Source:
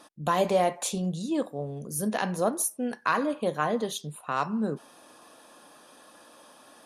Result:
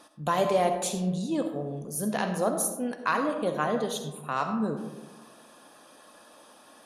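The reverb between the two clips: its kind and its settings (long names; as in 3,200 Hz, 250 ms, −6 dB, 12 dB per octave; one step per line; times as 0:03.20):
comb and all-pass reverb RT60 1.2 s, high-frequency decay 0.35×, pre-delay 25 ms, DRR 6.5 dB
level −1 dB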